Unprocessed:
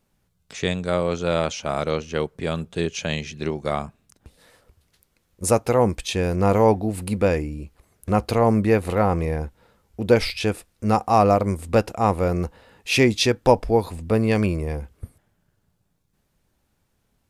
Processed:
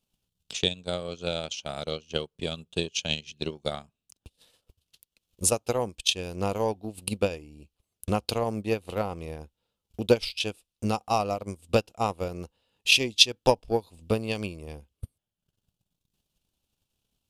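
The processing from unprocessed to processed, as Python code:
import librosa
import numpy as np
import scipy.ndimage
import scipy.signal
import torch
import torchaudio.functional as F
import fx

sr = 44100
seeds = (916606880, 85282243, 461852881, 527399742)

y = fx.high_shelf_res(x, sr, hz=2400.0, db=6.5, q=3.0)
y = fx.transient(y, sr, attack_db=11, sustain_db=-11)
y = y * librosa.db_to_amplitude(-13.0)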